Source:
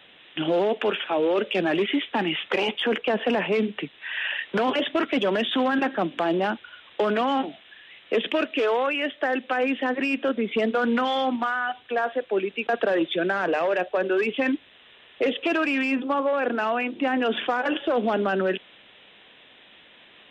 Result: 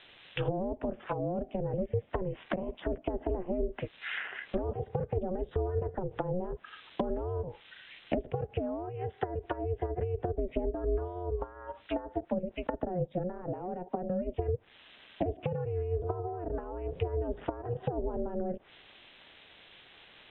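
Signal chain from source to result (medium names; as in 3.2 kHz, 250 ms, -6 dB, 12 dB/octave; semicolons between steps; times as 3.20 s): low-pass that closes with the level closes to 310 Hz, closed at -21 dBFS; ring modulator 180 Hz; trim -1 dB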